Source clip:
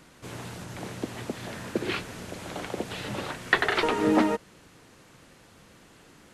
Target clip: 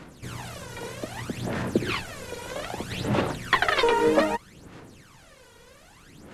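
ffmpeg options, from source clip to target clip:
-af "aphaser=in_gain=1:out_gain=1:delay=2.1:decay=0.7:speed=0.63:type=sinusoidal"

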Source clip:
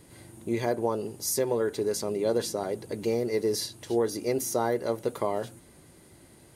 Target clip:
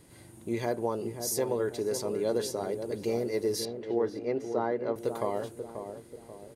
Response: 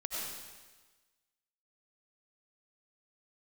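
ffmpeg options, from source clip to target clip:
-filter_complex "[0:a]asettb=1/sr,asplit=3[a][b][c];[a]atrim=end=3.654[d];[b]atrim=start=3.65:end=4.96,asetpts=PTS-STARTPTS,afade=t=in:d=0.004:c=qsin,afade=t=out:st=1.306:d=0.004:c=qsin,highpass=150,lowpass=2.4k[e];[c]atrim=start=4.956[f];[d][e]acrossfade=d=0.004:c1=hsin:c2=qsin[g];[g][f]acrossfade=d=0.004:c1=qsin:c2=hsin,asplit=2[h][i];[i]adelay=536,lowpass=f=820:p=1,volume=-7dB,asplit=2[j][k];[k]adelay=536,lowpass=f=820:p=1,volume=0.5,asplit=2[l][m];[m]adelay=536,lowpass=f=820:p=1,volume=0.5,asplit=2[n][o];[o]adelay=536,lowpass=f=820:p=1,volume=0.5,asplit=2[p][q];[q]adelay=536,lowpass=f=820:p=1,volume=0.5,asplit=2[r][s];[s]adelay=536,lowpass=f=820:p=1,volume=0.5[t];[h][j][l][n][p][r][t]amix=inputs=7:normalize=0,volume=-3dB"

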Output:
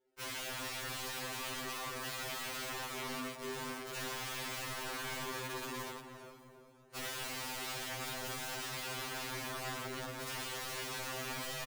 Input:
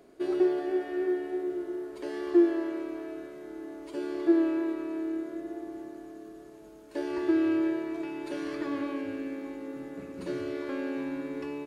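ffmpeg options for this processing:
-filter_complex "[0:a]highpass=f=370:p=1,agate=range=-33dB:threshold=-44dB:ratio=3:detection=peak,aecho=1:1:2.2:0.83,alimiter=level_in=1dB:limit=-24dB:level=0:latency=1:release=34,volume=-1dB,asplit=2[a][b];[b]acrusher=samples=33:mix=1:aa=0.000001:lfo=1:lforange=33:lforate=0.5,volume=-4dB[c];[a][c]amix=inputs=2:normalize=0,aeval=exprs='(mod(59.6*val(0)+1,2)-1)/59.6':c=same,asplit=2[d][e];[e]adelay=341,lowpass=f=1.3k:p=1,volume=-8dB,asplit=2[f][g];[g]adelay=341,lowpass=f=1.3k:p=1,volume=0.51,asplit=2[h][i];[i]adelay=341,lowpass=f=1.3k:p=1,volume=0.51,asplit=2[j][k];[k]adelay=341,lowpass=f=1.3k:p=1,volume=0.51,asplit=2[l][m];[m]adelay=341,lowpass=f=1.3k:p=1,volume=0.51,asplit=2[n][o];[o]adelay=341,lowpass=f=1.3k:p=1,volume=0.51[p];[d][f][h][j][l][n][p]amix=inputs=7:normalize=0,afftfilt=real='re*2.45*eq(mod(b,6),0)':imag='im*2.45*eq(mod(b,6),0)':win_size=2048:overlap=0.75,volume=1dB"

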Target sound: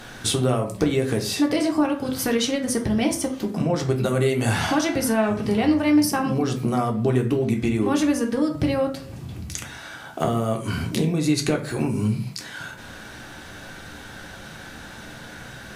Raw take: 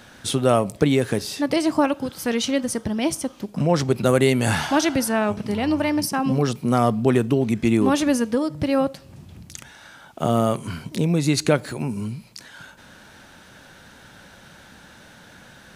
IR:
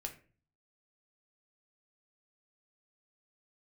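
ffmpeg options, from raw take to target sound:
-filter_complex "[0:a]acompressor=threshold=-26dB:ratio=6[a];[1:a]atrim=start_sample=2205,atrim=end_sample=6174,asetrate=35721,aresample=44100[b];[a][b]afir=irnorm=-1:irlink=0,volume=8dB"

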